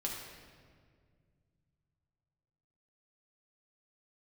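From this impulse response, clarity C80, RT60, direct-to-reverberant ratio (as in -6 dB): 4.0 dB, 2.0 s, -2.5 dB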